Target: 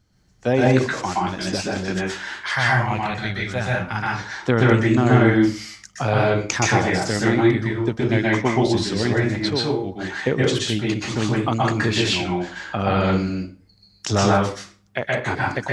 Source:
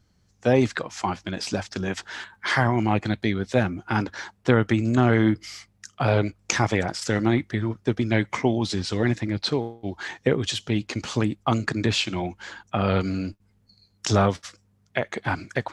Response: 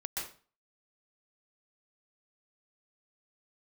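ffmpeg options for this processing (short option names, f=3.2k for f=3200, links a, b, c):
-filter_complex "[0:a]asettb=1/sr,asplit=3[a][b][c];[a]atrim=end=2.334[d];[b]atrim=start=2.33:end=4.2,asetpts=PTS-STARTPTS,afade=t=in:d=0.004:c=qsin,afade=t=out:st=1.866:d=0.004:c=qsin,equalizer=f=310:w=1.1:g=-13.5[e];[c]atrim=start=4.196[f];[d][e]acrossfade=d=0.004:c1=hsin:c2=qsin[g];[g][f]acrossfade=d=0.004:c1=qsin:c2=hsin[h];[1:a]atrim=start_sample=2205[i];[h][i]afir=irnorm=-1:irlink=0,volume=3dB"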